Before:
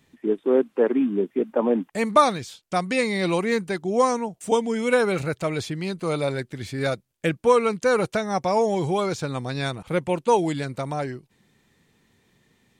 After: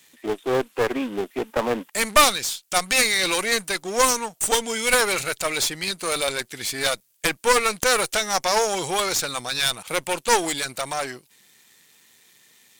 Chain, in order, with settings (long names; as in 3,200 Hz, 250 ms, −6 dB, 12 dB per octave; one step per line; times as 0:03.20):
gain on one half-wave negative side −7 dB
spectral tilt +4.5 dB per octave
harmonic generator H 4 −6 dB, 5 −10 dB, 8 −22 dB, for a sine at −3.5 dBFS
level −2.5 dB